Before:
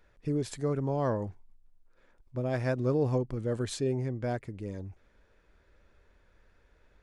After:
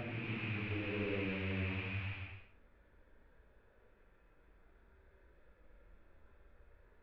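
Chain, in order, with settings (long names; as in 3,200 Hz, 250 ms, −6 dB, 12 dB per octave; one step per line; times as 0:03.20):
loose part that buzzes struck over −44 dBFS, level −25 dBFS
Gaussian smoothing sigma 2.7 samples
extreme stretch with random phases 4.2×, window 0.25 s, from 0:04.42
level −1 dB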